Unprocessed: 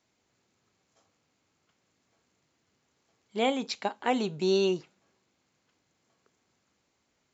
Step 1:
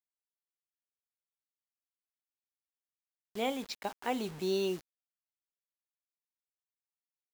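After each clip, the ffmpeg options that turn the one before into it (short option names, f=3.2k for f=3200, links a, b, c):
-af "acrusher=bits=6:mix=0:aa=0.000001,volume=-6.5dB"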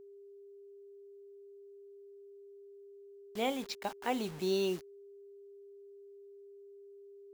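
-af "aeval=exprs='val(0)+0.00282*sin(2*PI*400*n/s)':c=same"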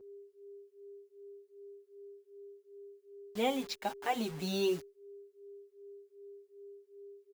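-filter_complex "[0:a]asplit=2[a][b];[b]adelay=5.9,afreqshift=2.6[c];[a][c]amix=inputs=2:normalize=1,volume=4dB"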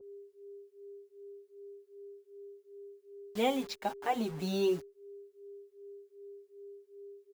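-af "adynamicequalizer=threshold=0.00251:dfrequency=1600:dqfactor=0.7:tfrequency=1600:tqfactor=0.7:attack=5:release=100:ratio=0.375:range=3.5:mode=cutabove:tftype=highshelf,volume=2dB"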